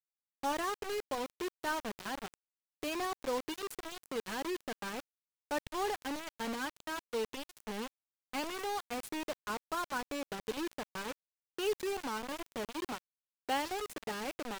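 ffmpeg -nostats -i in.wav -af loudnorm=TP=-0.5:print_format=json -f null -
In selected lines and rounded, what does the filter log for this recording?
"input_i" : "-38.7",
"input_tp" : "-22.7",
"input_lra" : "0.9",
"input_thresh" : "-48.8",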